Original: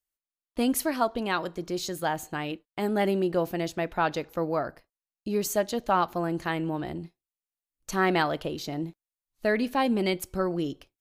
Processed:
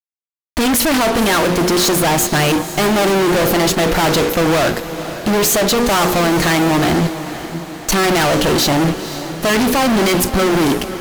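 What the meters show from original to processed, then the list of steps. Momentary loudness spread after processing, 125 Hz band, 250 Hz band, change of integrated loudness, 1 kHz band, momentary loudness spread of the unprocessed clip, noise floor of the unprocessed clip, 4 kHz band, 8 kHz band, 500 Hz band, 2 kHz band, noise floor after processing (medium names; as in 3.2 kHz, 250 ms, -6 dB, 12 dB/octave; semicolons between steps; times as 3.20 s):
8 LU, +16.0 dB, +14.0 dB, +14.0 dB, +12.0 dB, 10 LU, under -85 dBFS, +19.5 dB, +20.0 dB, +13.0 dB, +15.0 dB, -64 dBFS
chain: hum notches 60/120/180/240/300/360/420/480/540 Hz; fuzz box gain 51 dB, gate -52 dBFS; on a send: echo that smears into a reverb 503 ms, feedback 56%, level -12 dB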